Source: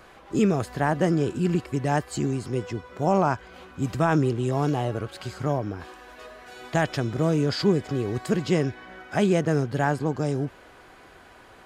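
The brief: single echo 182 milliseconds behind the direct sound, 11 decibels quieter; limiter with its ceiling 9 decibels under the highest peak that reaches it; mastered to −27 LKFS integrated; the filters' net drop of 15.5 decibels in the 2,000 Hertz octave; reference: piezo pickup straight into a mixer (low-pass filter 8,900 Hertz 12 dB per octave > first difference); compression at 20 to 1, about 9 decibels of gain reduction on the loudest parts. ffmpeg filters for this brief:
ffmpeg -i in.wav -af "equalizer=frequency=2000:width_type=o:gain=-4.5,acompressor=threshold=-25dB:ratio=20,alimiter=limit=-23.5dB:level=0:latency=1,lowpass=8900,aderivative,aecho=1:1:182:0.282,volume=23dB" out.wav

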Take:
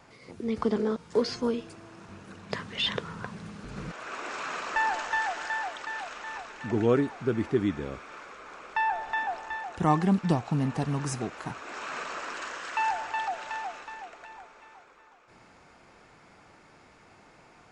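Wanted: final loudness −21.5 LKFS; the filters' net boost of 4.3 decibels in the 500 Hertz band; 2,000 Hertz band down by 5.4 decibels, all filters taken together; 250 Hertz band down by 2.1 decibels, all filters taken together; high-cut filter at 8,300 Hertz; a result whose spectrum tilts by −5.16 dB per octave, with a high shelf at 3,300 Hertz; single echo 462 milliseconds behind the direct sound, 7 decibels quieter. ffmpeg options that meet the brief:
ffmpeg -i in.wav -af "lowpass=8300,equalizer=frequency=250:width_type=o:gain=-5,equalizer=frequency=500:width_type=o:gain=7,equalizer=frequency=2000:width_type=o:gain=-5.5,highshelf=frequency=3300:gain=-5.5,aecho=1:1:462:0.447,volume=8dB" out.wav

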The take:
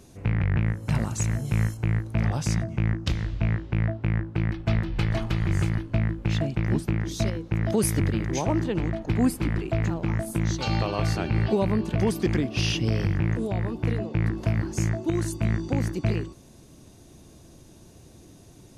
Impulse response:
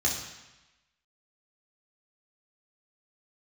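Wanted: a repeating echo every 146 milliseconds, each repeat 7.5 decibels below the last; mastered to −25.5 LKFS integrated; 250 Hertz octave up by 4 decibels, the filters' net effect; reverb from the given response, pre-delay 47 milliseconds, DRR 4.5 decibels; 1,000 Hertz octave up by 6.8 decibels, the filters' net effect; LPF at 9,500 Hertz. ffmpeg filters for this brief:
-filter_complex "[0:a]lowpass=9500,equalizer=frequency=250:width_type=o:gain=5,equalizer=frequency=1000:width_type=o:gain=8.5,aecho=1:1:146|292|438|584|730:0.422|0.177|0.0744|0.0312|0.0131,asplit=2[link_01][link_02];[1:a]atrim=start_sample=2205,adelay=47[link_03];[link_02][link_03]afir=irnorm=-1:irlink=0,volume=-13.5dB[link_04];[link_01][link_04]amix=inputs=2:normalize=0,volume=-4dB"

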